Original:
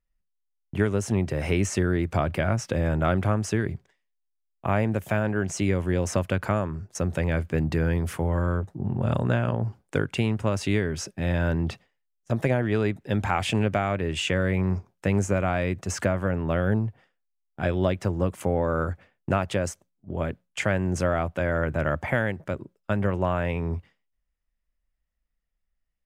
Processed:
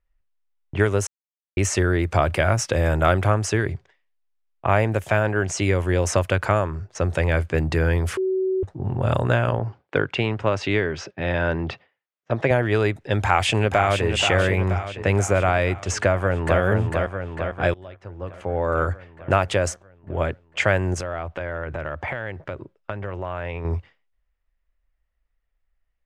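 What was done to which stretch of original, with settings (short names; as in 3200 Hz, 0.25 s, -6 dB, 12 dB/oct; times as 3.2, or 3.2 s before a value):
1.07–1.57 mute
2.22–3.21 high shelf 7400 Hz +8 dB
8.17–8.63 bleep 377 Hz -23.5 dBFS
9.59–12.51 BPF 120–4000 Hz
13.17–14.06 echo throw 0.48 s, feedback 60%, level -7.5 dB
16.01–16.61 echo throw 0.45 s, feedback 65%, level -4 dB
17.74–18.86 fade in quadratic, from -23 dB
20.94–23.65 compressor, threshold -30 dBFS
whole clip: low-pass opened by the level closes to 2700 Hz, open at -20 dBFS; bell 200 Hz -10.5 dB 1.1 oct; gain +7 dB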